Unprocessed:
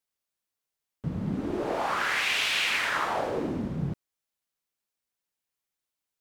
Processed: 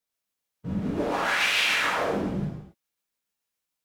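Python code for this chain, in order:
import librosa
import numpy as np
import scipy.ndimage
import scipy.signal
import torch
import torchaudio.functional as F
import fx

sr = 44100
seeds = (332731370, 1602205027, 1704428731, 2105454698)

y = fx.stretch_vocoder(x, sr, factor=0.62)
y = y * (1.0 - 0.37 / 2.0 + 0.37 / 2.0 * np.cos(2.0 * np.pi * 7.0 * (np.arange(len(y)) / sr)))
y = fx.rev_gated(y, sr, seeds[0], gate_ms=310, shape='falling', drr_db=-5.0)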